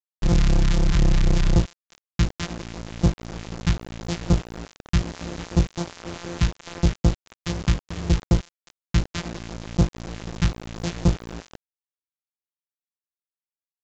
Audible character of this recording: a buzz of ramps at a fixed pitch in blocks of 256 samples; phasing stages 2, 4 Hz, lowest notch 510–2000 Hz; a quantiser's noise floor 6-bit, dither none; µ-law

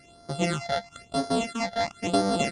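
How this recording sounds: a buzz of ramps at a fixed pitch in blocks of 64 samples; phasing stages 8, 1 Hz, lowest notch 330–2600 Hz; MP2

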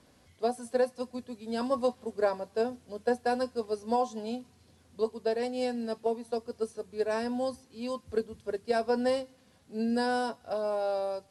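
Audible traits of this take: noise floor -62 dBFS; spectral tilt -3.0 dB/oct

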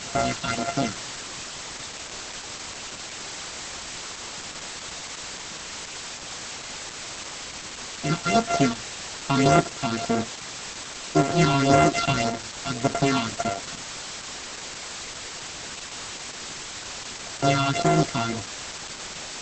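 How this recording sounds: a buzz of ramps at a fixed pitch in blocks of 64 samples; phasing stages 6, 1.8 Hz, lowest notch 470–5000 Hz; a quantiser's noise floor 6-bit, dither triangular; Opus

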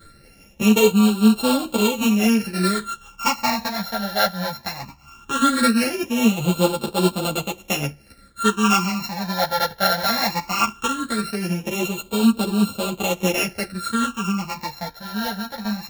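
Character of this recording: a buzz of ramps at a fixed pitch in blocks of 32 samples; phasing stages 8, 0.18 Hz, lowest notch 340–1900 Hz; tremolo triangle 5 Hz, depth 40%; a shimmering, thickened sound

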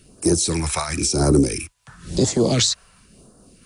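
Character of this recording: phasing stages 2, 0.97 Hz, lowest notch 280–2300 Hz; noise-modulated level

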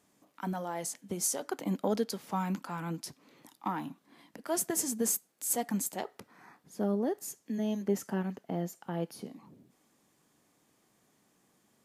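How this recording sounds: noise floor -71 dBFS; spectral tilt -4.0 dB/oct

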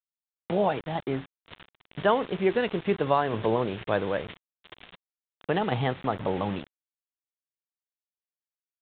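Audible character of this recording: tremolo saw down 2.1 Hz, depth 40%; a quantiser's noise floor 6-bit, dither none; µ-law

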